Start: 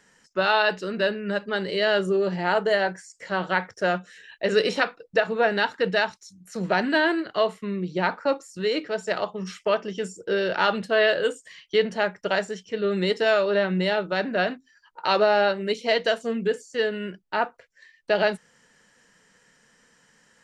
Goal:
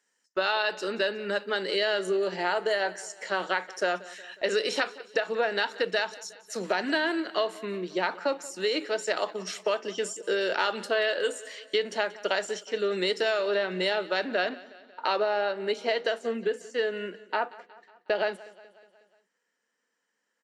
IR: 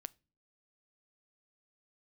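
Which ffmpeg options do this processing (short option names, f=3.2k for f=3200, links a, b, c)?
-af "highpass=f=260:w=0.5412,highpass=f=260:w=1.3066,agate=range=-18dB:threshold=-49dB:ratio=16:detection=peak,asetnsamples=n=441:p=0,asendcmd='14.49 highshelf g -3.5',highshelf=f=3.8k:g=8,acompressor=threshold=-23dB:ratio=6,aecho=1:1:182|364|546|728|910:0.1|0.058|0.0336|0.0195|0.0113"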